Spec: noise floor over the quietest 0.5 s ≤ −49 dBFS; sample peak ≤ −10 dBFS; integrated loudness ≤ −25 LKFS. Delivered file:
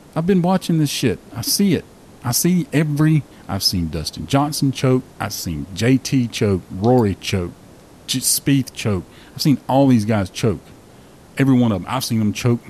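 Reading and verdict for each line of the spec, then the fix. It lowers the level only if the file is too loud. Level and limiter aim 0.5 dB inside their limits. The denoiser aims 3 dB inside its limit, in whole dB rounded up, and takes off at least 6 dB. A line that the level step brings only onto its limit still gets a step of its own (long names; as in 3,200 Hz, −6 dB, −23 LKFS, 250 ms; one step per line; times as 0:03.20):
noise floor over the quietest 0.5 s −44 dBFS: out of spec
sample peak −5.0 dBFS: out of spec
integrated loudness −18.5 LKFS: out of spec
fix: level −7 dB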